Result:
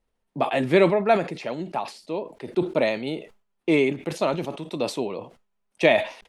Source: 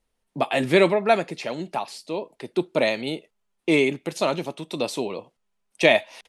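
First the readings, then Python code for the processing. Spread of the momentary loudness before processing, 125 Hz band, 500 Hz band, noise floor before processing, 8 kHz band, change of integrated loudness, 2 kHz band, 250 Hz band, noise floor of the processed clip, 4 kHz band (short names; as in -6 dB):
13 LU, +1.0 dB, 0.0 dB, -76 dBFS, -4.5 dB, -0.5 dB, -2.5 dB, +0.5 dB, -75 dBFS, -4.5 dB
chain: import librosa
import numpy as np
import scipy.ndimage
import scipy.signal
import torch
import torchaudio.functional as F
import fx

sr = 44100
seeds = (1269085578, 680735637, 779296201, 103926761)

y = fx.high_shelf(x, sr, hz=3200.0, db=-9.5)
y = fx.sustainer(y, sr, db_per_s=150.0)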